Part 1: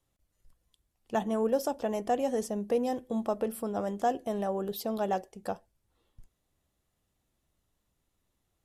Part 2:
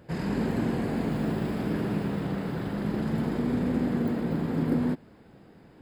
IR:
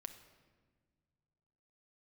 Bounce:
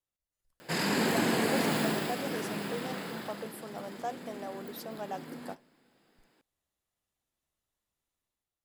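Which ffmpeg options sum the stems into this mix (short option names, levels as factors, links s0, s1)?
-filter_complex "[0:a]volume=0.224[s0];[1:a]highpass=160,highshelf=f=2800:g=11,adelay=600,volume=0.668,afade=t=out:st=1.77:d=0.41:silence=0.446684,afade=t=out:st=2.99:d=0.56:silence=0.316228,asplit=2[s1][s2];[s2]volume=0.531[s3];[2:a]atrim=start_sample=2205[s4];[s3][s4]afir=irnorm=-1:irlink=0[s5];[s0][s1][s5]amix=inputs=3:normalize=0,lowshelf=f=430:g=-10,dynaudnorm=f=100:g=9:m=2.37"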